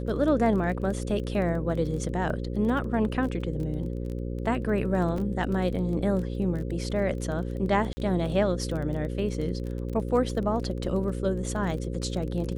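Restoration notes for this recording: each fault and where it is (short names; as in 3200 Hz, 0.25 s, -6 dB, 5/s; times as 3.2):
buzz 60 Hz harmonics 9 -32 dBFS
crackle 18/s -33 dBFS
5.18 gap 3.5 ms
7.93–7.97 gap 40 ms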